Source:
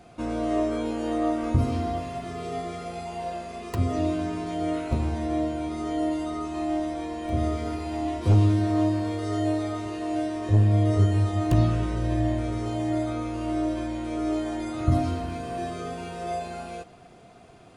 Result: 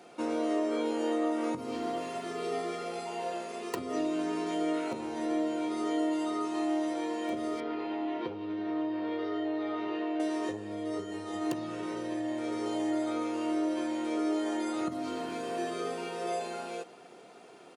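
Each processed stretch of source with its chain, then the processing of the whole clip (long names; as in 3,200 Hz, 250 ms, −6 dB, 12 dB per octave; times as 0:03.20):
0:07.60–0:10.20: low-pass filter 3,600 Hz 24 dB per octave + downward compressor 3 to 1, threshold −28 dBFS
whole clip: comb filter 2.2 ms, depth 38%; downward compressor 12 to 1, threshold −25 dBFS; high-pass filter 210 Hz 24 dB per octave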